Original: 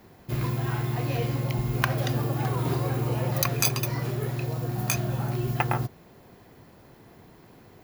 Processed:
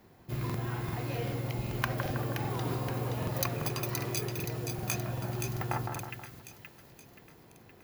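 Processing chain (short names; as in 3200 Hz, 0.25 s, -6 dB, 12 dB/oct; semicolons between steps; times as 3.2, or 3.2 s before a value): split-band echo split 1800 Hz, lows 0.16 s, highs 0.523 s, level -5 dB; crackling interface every 0.39 s, samples 2048, repeat, from 0.45; gain -6.5 dB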